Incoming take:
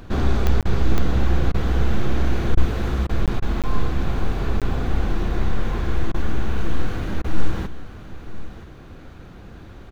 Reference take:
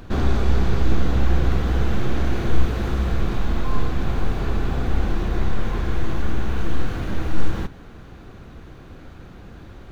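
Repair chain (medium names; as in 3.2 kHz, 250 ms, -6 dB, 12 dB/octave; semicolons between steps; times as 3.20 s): de-click; interpolate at 0.61/3.26/3.62/4.60 s, 17 ms; interpolate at 0.63/1.52/2.55/3.07/3.40/6.12/7.22 s, 21 ms; inverse comb 977 ms -15 dB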